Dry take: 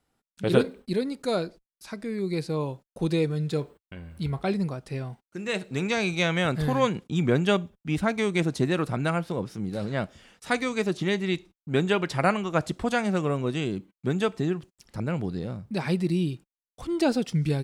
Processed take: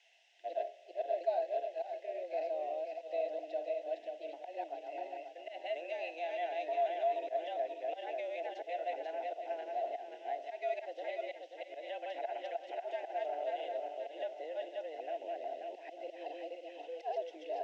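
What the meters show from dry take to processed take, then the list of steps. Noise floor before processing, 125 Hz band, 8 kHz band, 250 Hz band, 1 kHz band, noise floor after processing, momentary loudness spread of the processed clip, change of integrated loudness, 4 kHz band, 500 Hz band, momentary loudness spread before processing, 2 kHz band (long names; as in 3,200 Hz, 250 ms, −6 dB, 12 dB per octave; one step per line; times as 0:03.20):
below −85 dBFS, below −40 dB, below −25 dB, −30.0 dB, −5.5 dB, −56 dBFS, 10 LU, −12.0 dB, −18.0 dB, −8.0 dB, 10 LU, −17.5 dB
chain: feedback delay that plays each chunk backwards 267 ms, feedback 57%, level −2 dB
dynamic equaliser 2,600 Hz, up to −5 dB, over −46 dBFS, Q 2.8
volume swells 147 ms
brickwall limiter −18 dBFS, peak gain reduction 9.5 dB
background noise blue −41 dBFS
formant filter e
frequency shifter +160 Hz
loudspeaker in its box 400–5,900 Hz, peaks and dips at 1,100 Hz −9 dB, 1,900 Hz −7 dB, 4,400 Hz −8 dB
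level +2 dB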